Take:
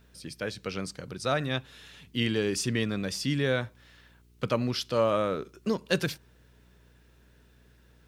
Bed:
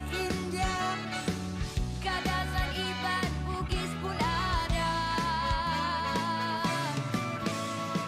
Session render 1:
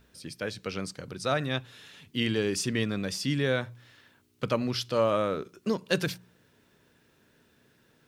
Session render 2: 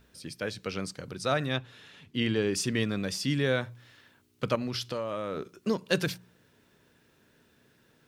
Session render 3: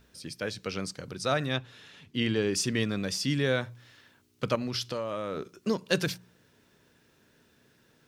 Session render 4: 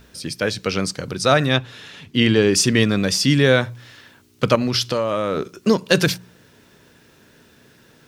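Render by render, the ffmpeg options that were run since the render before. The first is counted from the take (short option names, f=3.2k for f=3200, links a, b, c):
-af "bandreject=f=60:t=h:w=4,bandreject=f=120:t=h:w=4,bandreject=f=180:t=h:w=4"
-filter_complex "[0:a]asettb=1/sr,asplit=3[a][b][c];[a]atrim=end=1.574[d];[b]atrim=start=1.57:end=2.55,asetpts=PTS-STARTPTS,afade=t=in:d=0.004:c=qsin,afade=t=out:st=0.976:d=0.004:c=qsin,aemphasis=mode=reproduction:type=cd[e];[c]atrim=start=2.546[f];[d][e]acrossfade=d=0.004:c1=hsin:c2=qsin[g];[g][f]acrossfade=d=0.004:c1=qsin:c2=hsin,asettb=1/sr,asplit=3[h][i][j];[h]atrim=end=4.554[k];[i]atrim=start=4.55:end=5.52,asetpts=PTS-STARTPTS,afade=t=in:d=0.004:c=qsin,afade=t=out:st=0.966:d=0.004:c=qsin,acompressor=threshold=-28dB:ratio=12:attack=3.2:release=140:knee=1:detection=peak[l];[j]atrim=start=5.516[m];[k][l]acrossfade=d=0.004:c1=hsin:c2=qsin[n];[n][m]acrossfade=d=0.004:c1=qsin:c2=hsin"
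-af "equalizer=f=5.7k:w=1.5:g=3"
-af "volume=12dB,alimiter=limit=-1dB:level=0:latency=1"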